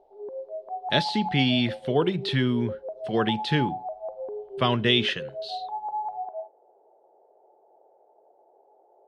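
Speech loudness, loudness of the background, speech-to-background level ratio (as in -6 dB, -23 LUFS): -25.0 LUFS, -35.0 LUFS, 10.0 dB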